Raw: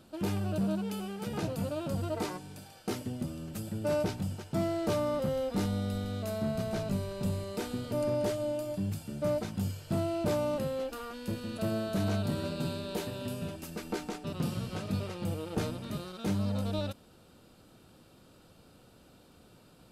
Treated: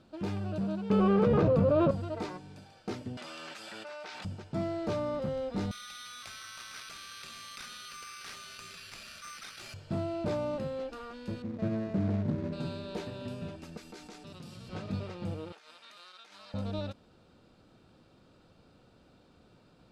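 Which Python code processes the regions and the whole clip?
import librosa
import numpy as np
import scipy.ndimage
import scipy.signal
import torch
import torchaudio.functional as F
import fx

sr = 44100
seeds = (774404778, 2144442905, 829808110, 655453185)

y = fx.chain(x, sr, fx.bass_treble(bass_db=8, treble_db=-11),
    fx.small_body(hz=(510.0, 1100.0), ring_ms=20, db=14),
    fx.env_flatten(amount_pct=100), at=(0.9, 1.91))
y = fx.chain(y, sr, fx.highpass(hz=1300.0, slope=12),
    fx.high_shelf(hz=6600.0, db=-10.0),
    fx.env_flatten(amount_pct=100), at=(3.17, 4.25))
y = fx.chain(y, sr, fx.brickwall_bandpass(low_hz=1100.0, high_hz=7600.0),
    fx.resample_bad(factor=6, down='none', up='zero_stuff'),
    fx.env_flatten(amount_pct=70), at=(5.71, 9.74))
y = fx.chain(y, sr, fx.median_filter(points=41),
    fx.highpass(hz=150.0, slope=6),
    fx.low_shelf(hz=340.0, db=8.5), at=(11.42, 12.53))
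y = fx.chain(y, sr, fx.pre_emphasis(coefficient=0.8),
    fx.env_flatten(amount_pct=70), at=(13.77, 14.69))
y = fx.chain(y, sr, fx.highpass(hz=1400.0, slope=12),
    fx.over_compress(threshold_db=-50.0, ratio=-1.0), at=(15.52, 16.54))
y = scipy.signal.sosfilt(scipy.signal.butter(2, 4900.0, 'lowpass', fs=sr, output='sos'), y)
y = fx.peak_eq(y, sr, hz=3000.0, db=-3.5, octaves=0.2)
y = y * librosa.db_to_amplitude(-2.5)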